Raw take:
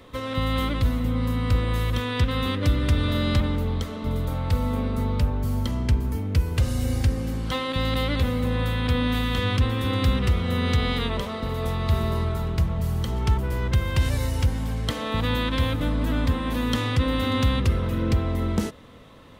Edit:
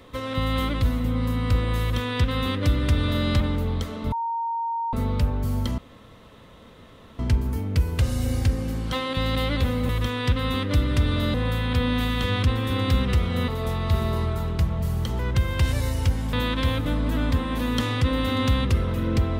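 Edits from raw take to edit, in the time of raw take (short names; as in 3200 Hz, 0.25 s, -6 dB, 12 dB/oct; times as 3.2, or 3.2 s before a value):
1.81–3.26 copy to 8.48
4.12–4.93 bleep 924 Hz -24 dBFS
5.78 insert room tone 1.41 s
10.62–11.47 cut
13.18–13.56 cut
14.7–15.28 cut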